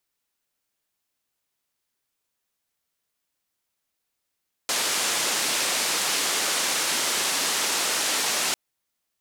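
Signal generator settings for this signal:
band-limited noise 270–8,500 Hz, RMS −25 dBFS 3.85 s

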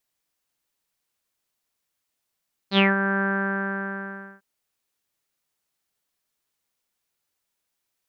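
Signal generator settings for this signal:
subtractive voice saw G3 24 dB per octave, low-pass 1,600 Hz, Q 8.5, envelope 1.5 octaves, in 0.20 s, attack 72 ms, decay 0.17 s, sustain −8.5 dB, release 1.20 s, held 0.50 s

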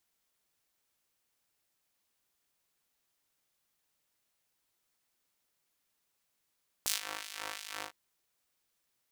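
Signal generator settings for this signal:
subtractive patch with filter wobble G#2, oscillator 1 square, sub −0.5 dB, filter highpass, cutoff 790 Hz, Q 0.77, filter envelope 3 octaves, filter decay 0.08 s, attack 1.1 ms, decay 0.14 s, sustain −20 dB, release 0.10 s, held 0.96 s, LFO 2.9 Hz, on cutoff 0.9 octaves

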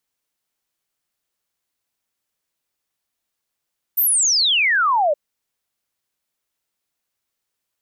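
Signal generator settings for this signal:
exponential sine sweep 15,000 Hz → 560 Hz 1.17 s −14 dBFS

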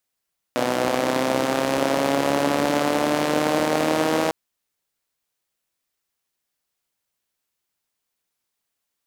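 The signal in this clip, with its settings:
pulse-train model of a four-cylinder engine, changing speed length 3.75 s, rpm 3,700, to 4,800, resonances 300/530 Hz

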